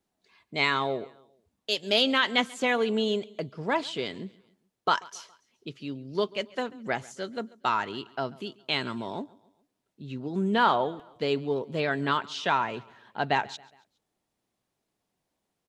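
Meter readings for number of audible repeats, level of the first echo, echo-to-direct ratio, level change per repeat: 2, -23.0 dB, -22.0 dB, -6.5 dB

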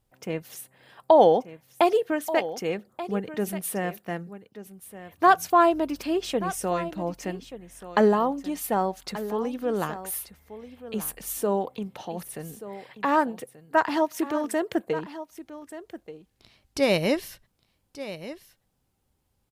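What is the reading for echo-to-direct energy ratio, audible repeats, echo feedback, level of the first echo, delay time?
-14.0 dB, 1, no regular repeats, -14.0 dB, 1182 ms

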